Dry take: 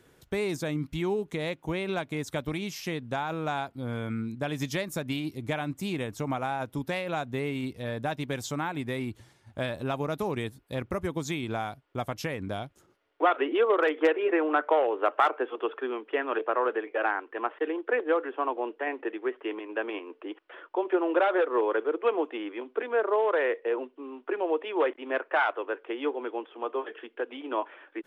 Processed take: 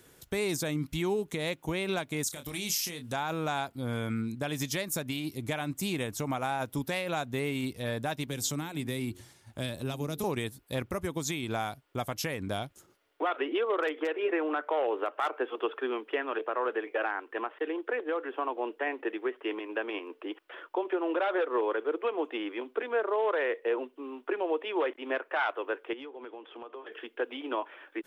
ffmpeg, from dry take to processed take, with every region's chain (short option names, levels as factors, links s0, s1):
-filter_complex "[0:a]asettb=1/sr,asplit=3[s0][s1][s2];[s0]atrim=end=2.234[s3];[s1]atrim=start=2.23:end=3.13,asetpts=PTS-STARTPTS,afade=t=in:d=0.004:c=qsin,afade=t=out:st=0.896:d=0.004:c=qsin,acompressor=threshold=0.0224:ratio=12:attack=3.2:release=140:knee=1:detection=peak,equalizer=f=9900:t=o:w=2.5:g=11,asplit=2[s4][s5];[s5]adelay=28,volume=0.376[s6];[s4][s6]amix=inputs=2:normalize=0,atrim=end_sample=39690[s7];[s2]atrim=start=3.126[s8];[s3][s7]acrossfade=d=0.004:c1=hsin:c2=qsin[s9];[s9][s8]acrossfade=d=0.004:c1=qsin:c2=hsin,asettb=1/sr,asplit=3[s10][s11][s12];[s10]atrim=end=8.274[s13];[s11]atrim=start=8.27:end=10.24,asetpts=PTS-STARTPTS,afade=t=in:d=0.004:c=qsin,afade=t=out:st=1.966:d=0.004:c=qsin,acrossover=split=400|3000[s14][s15][s16];[s15]acompressor=threshold=0.00501:ratio=2.5:attack=3.2:release=140:knee=2.83:detection=peak[s17];[s14][s17][s16]amix=inputs=3:normalize=0,bandreject=f=89.73:t=h:w=4,bandreject=f=179.46:t=h:w=4,bandreject=f=269.19:t=h:w=4,bandreject=f=358.92:t=h:w=4,bandreject=f=448.65:t=h:w=4[s18];[s12]atrim=start=10.236[s19];[s13][s18]acrossfade=d=0.004:c1=hsin:c2=qsin[s20];[s20][s19]acrossfade=d=0.004:c1=qsin:c2=hsin,asettb=1/sr,asplit=3[s21][s22][s23];[s21]atrim=end=25.934[s24];[s22]atrim=start=25.93:end=26.92,asetpts=PTS-STARTPTS,afade=t=in:d=0.004:c=qsin,afade=t=out:st=0.986:d=0.004:c=qsin,lowpass=5200,acompressor=threshold=0.01:ratio=10:attack=3.2:release=140:knee=1:detection=peak[s25];[s23]atrim=start=26.916[s26];[s24][s25]acrossfade=d=0.004:c1=hsin:c2=qsin[s27];[s27][s26]acrossfade=d=0.004:c1=qsin:c2=hsin,highshelf=f=4700:g=11.5,alimiter=limit=0.0944:level=0:latency=1:release=269"